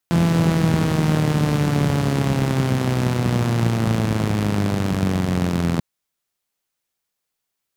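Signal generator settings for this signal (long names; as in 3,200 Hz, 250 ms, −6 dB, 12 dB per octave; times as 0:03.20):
pulse-train model of a four-cylinder engine, changing speed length 5.69 s, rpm 5,100, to 2,500, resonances 120/170 Hz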